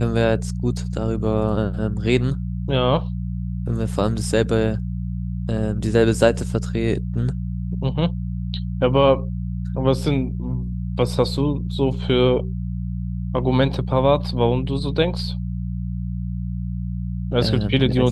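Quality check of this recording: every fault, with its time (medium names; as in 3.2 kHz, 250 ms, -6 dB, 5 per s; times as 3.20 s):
hum 60 Hz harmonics 3 -26 dBFS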